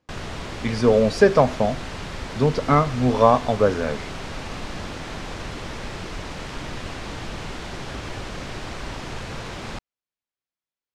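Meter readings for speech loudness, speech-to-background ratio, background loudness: -20.0 LUFS, 13.5 dB, -33.5 LUFS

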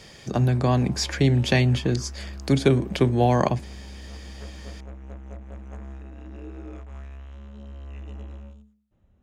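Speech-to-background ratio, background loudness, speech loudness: 18.0 dB, -40.5 LUFS, -22.5 LUFS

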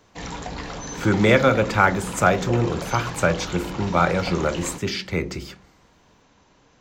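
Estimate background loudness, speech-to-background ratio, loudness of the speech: -33.0 LUFS, 11.5 dB, -21.5 LUFS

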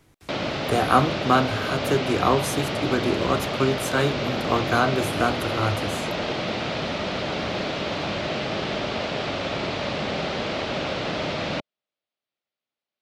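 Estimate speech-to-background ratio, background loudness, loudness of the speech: 2.5 dB, -27.0 LUFS, -24.5 LUFS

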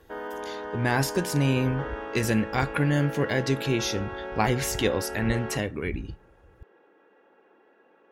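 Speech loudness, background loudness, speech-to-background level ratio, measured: -27.0 LUFS, -36.0 LUFS, 9.0 dB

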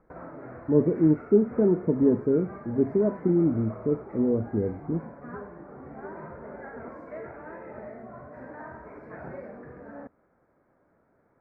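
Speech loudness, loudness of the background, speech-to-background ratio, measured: -25.0 LUFS, -42.5 LUFS, 17.5 dB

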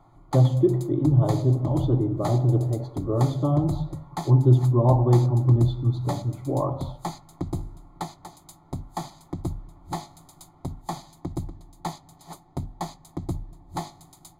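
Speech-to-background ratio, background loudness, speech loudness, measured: 14.0 dB, -36.5 LUFS, -22.5 LUFS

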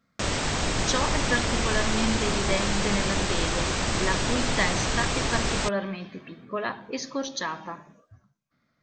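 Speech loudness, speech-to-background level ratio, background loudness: -30.5 LUFS, -4.0 dB, -26.5 LUFS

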